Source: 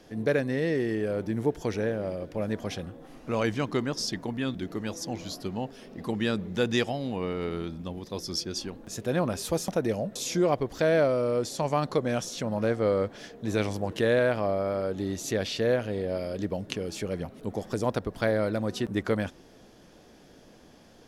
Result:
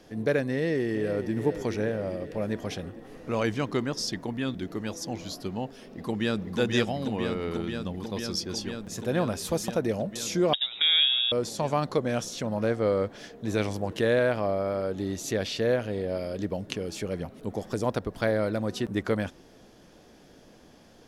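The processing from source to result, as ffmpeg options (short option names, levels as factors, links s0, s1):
-filter_complex "[0:a]asplit=2[s0][s1];[s1]afade=t=in:st=0.52:d=0.01,afade=t=out:st=1.33:d=0.01,aecho=0:1:420|840|1260|1680|2100|2520|2940|3360|3780|4200:0.298538|0.208977|0.146284|0.102399|0.071679|0.0501753|0.0351227|0.0245859|0.0172101|0.0120471[s2];[s0][s2]amix=inputs=2:normalize=0,asplit=2[s3][s4];[s4]afade=t=in:st=5.78:d=0.01,afade=t=out:st=6.58:d=0.01,aecho=0:1:490|980|1470|1960|2450|2940|3430|3920|4410|4900|5390|5880:0.595662|0.506313|0.430366|0.365811|0.310939|0.264298|0.224654|0.190956|0.162312|0.137965|0.117271|0.09968[s5];[s3][s5]amix=inputs=2:normalize=0,asettb=1/sr,asplit=3[s6][s7][s8];[s6]atrim=end=10.534[s9];[s7]atrim=start=10.53:end=11.32,asetpts=PTS-STARTPTS,afade=t=in:d=0.004:c=qsin,afade=t=out:st=0.786:d=0.004:c=qsin,lowpass=f=3300:t=q:w=0.5098,lowpass=f=3300:t=q:w=0.6013,lowpass=f=3300:t=q:w=0.9,lowpass=f=3300:t=q:w=2.563,afreqshift=-3900[s10];[s8]atrim=start=11.316[s11];[s9][s10]acrossfade=d=0.004:c1=hsin:c2=qsin[s12];[s12][s11]acrossfade=d=0.004:c1=qsin:c2=hsin"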